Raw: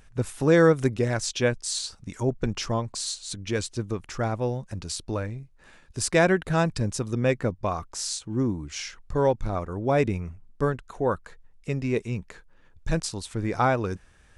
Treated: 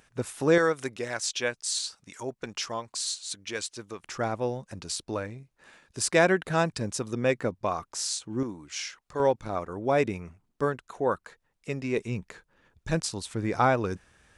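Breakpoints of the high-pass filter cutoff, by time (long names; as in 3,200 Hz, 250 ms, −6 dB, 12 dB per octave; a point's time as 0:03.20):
high-pass filter 6 dB per octave
290 Hz
from 0:00.58 970 Hz
from 0:04.03 260 Hz
from 0:08.43 740 Hz
from 0:09.20 290 Hz
from 0:11.98 110 Hz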